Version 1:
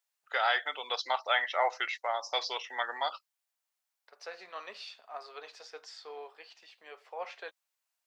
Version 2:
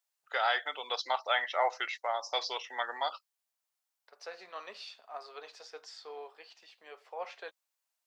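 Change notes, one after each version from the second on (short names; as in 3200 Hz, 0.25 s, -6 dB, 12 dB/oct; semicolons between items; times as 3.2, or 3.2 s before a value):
master: add bell 2100 Hz -2.5 dB 1.4 oct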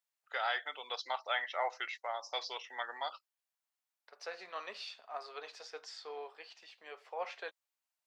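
first voice -6.5 dB; master: add bell 2100 Hz +2.5 dB 1.4 oct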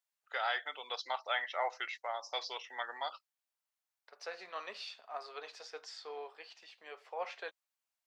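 none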